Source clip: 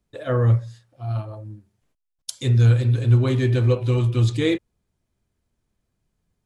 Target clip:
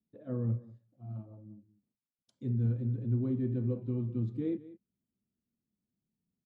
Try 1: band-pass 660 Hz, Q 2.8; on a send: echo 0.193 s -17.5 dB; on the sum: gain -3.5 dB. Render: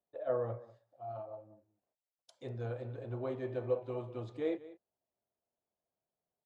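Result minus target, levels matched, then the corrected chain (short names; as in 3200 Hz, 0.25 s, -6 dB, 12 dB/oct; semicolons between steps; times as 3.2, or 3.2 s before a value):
500 Hz band +11.0 dB
band-pass 220 Hz, Q 2.8; on a send: echo 0.193 s -17.5 dB; on the sum: gain -3.5 dB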